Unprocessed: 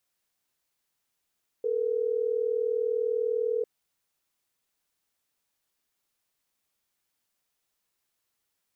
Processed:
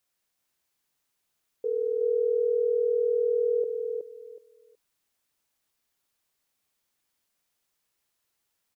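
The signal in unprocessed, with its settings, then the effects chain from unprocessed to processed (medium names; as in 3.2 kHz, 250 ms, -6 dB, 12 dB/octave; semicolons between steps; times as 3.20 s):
call progress tone ringback tone, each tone -27.5 dBFS
feedback delay 371 ms, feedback 22%, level -4.5 dB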